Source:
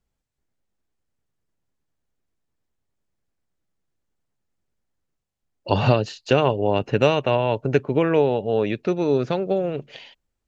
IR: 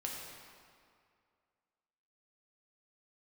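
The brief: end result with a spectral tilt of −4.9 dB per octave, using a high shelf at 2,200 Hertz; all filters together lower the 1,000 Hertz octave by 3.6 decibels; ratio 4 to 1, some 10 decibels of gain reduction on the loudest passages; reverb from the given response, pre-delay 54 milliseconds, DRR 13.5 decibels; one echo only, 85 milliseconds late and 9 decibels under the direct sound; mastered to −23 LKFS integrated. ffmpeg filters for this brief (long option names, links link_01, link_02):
-filter_complex "[0:a]equalizer=frequency=1000:width_type=o:gain=-6,highshelf=frequency=2200:gain=6,acompressor=threshold=-25dB:ratio=4,aecho=1:1:85:0.355,asplit=2[link_01][link_02];[1:a]atrim=start_sample=2205,adelay=54[link_03];[link_02][link_03]afir=irnorm=-1:irlink=0,volume=-14.5dB[link_04];[link_01][link_04]amix=inputs=2:normalize=0,volume=6dB"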